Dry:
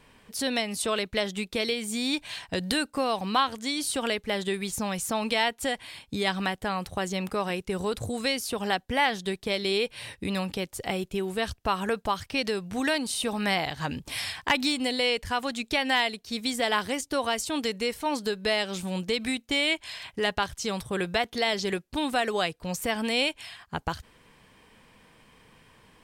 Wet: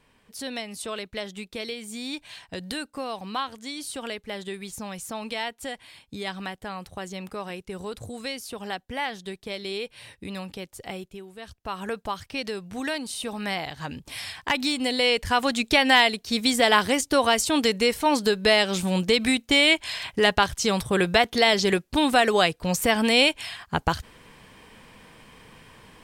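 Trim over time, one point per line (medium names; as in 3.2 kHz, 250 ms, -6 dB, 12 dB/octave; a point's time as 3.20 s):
10.97 s -5.5 dB
11.32 s -14.5 dB
11.86 s -3 dB
14.20 s -3 dB
15.47 s +7 dB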